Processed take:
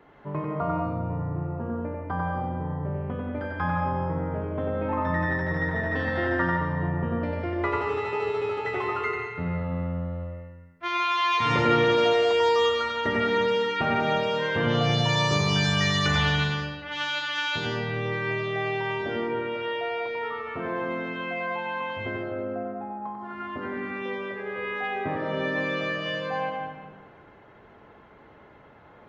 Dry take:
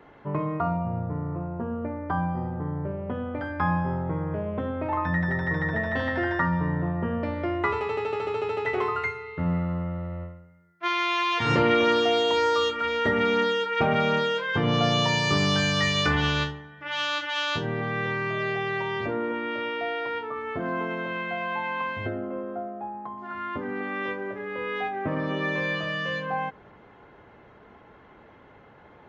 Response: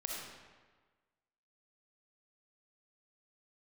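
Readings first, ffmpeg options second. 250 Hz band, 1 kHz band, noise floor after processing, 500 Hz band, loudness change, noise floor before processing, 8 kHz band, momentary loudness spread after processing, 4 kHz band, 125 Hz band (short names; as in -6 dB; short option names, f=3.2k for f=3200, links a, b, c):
-1.5 dB, 0.0 dB, -52 dBFS, +0.5 dB, 0.0 dB, -52 dBFS, n/a, 10 LU, -0.5 dB, +0.5 dB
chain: -filter_complex "[0:a]asplit=2[a][b];[1:a]atrim=start_sample=2205,adelay=94[c];[b][c]afir=irnorm=-1:irlink=0,volume=0dB[d];[a][d]amix=inputs=2:normalize=0,volume=-3.5dB"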